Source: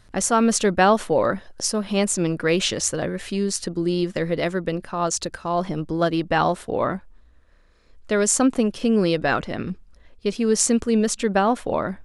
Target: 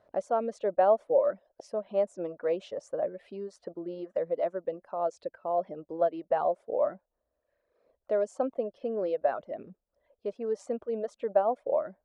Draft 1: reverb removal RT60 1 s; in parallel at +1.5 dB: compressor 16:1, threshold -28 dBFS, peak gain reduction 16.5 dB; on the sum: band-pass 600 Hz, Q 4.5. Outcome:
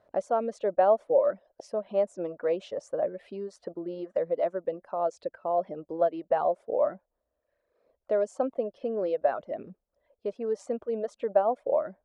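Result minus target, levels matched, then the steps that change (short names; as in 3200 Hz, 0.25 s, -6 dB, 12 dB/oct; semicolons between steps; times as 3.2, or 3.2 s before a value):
compressor: peak gain reduction -9 dB
change: compressor 16:1, threshold -37.5 dBFS, peak gain reduction 25.5 dB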